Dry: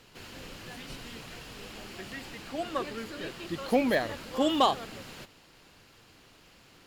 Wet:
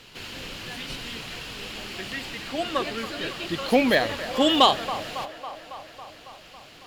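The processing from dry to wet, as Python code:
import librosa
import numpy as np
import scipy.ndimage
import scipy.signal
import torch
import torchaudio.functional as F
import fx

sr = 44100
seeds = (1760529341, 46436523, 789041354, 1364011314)

p1 = fx.peak_eq(x, sr, hz=3200.0, db=6.5, octaves=1.4)
p2 = p1 + fx.echo_wet_bandpass(p1, sr, ms=276, feedback_pct=70, hz=1000.0, wet_db=-12, dry=0)
y = p2 * 10.0 ** (5.0 / 20.0)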